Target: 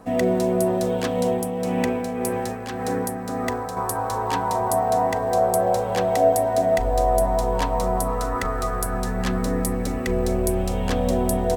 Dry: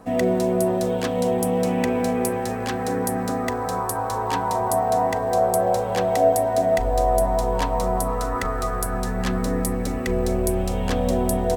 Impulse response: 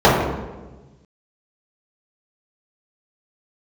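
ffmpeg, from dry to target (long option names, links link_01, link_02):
-filter_complex "[0:a]asettb=1/sr,asplit=3[link_01][link_02][link_03];[link_01]atrim=end=1.264[link_04];[link_02]atrim=start=1.26:end=3.77,asetpts=PTS-STARTPTS,afade=type=in:duration=0.004:curve=qsin,afade=type=out:start_time=2.506:duration=0.004:curve=qsin,tremolo=f=1.8:d=0.49[link_05];[link_03]atrim=start=3.766[link_06];[link_04][link_05]acrossfade=duration=0.004:curve1=hsin:curve2=qsin[link_07];[link_07][link_06]acrossfade=duration=0.004:curve1=qsin:curve2=hsin"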